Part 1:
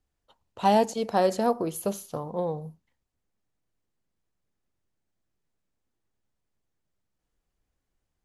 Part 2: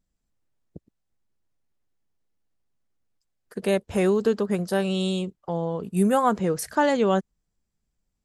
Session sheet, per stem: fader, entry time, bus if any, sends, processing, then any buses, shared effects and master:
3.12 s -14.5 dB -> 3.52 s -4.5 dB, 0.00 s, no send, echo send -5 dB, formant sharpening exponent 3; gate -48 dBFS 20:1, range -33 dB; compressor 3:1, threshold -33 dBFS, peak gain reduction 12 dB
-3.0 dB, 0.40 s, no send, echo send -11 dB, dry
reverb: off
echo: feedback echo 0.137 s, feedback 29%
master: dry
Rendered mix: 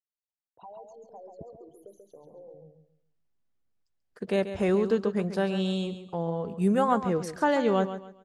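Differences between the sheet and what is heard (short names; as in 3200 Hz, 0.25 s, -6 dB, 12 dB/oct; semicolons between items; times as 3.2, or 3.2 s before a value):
stem 2: entry 0.40 s -> 0.65 s; master: extra air absorption 75 m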